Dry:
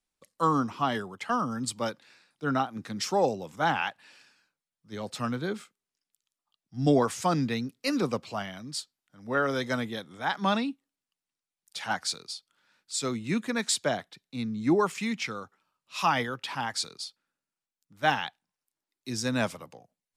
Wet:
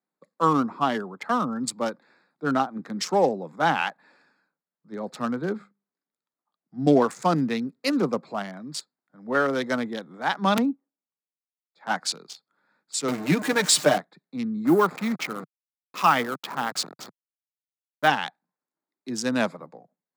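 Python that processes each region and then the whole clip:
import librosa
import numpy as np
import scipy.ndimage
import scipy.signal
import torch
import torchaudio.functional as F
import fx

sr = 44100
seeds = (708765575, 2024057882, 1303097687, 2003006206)

y = fx.chain(x, sr, fx.high_shelf(hz=7800.0, db=-10.5),
    fx.hum_notches(base_hz=50, count=4), at=(5.53, 6.87))
y = fx.chain(y, sr, fx.bandpass_q(hz=440.0, q=0.52),
    fx.overflow_wrap(gain_db=23.5),
    fx.band_widen(depth_pct=70), at=(10.57, 11.87))
y = fx.chain(y, sr, fx.zero_step(step_db=-30.5),
    fx.comb(ms=6.6, depth=0.75), at=(13.08, 13.98))
y = fx.chain(y, sr, fx.delta_hold(step_db=-34.5),
    fx.peak_eq(hz=1300.0, db=6.0, octaves=0.28), at=(14.65, 18.08))
y = fx.wiener(y, sr, points=15)
y = scipy.signal.sosfilt(scipy.signal.butter(6, 150.0, 'highpass', fs=sr, output='sos'), y)
y = F.gain(torch.from_numpy(y), 4.5).numpy()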